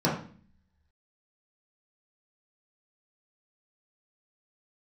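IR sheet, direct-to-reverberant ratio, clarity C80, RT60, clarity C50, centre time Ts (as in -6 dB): -7.0 dB, 10.0 dB, 0.45 s, 5.5 dB, 32 ms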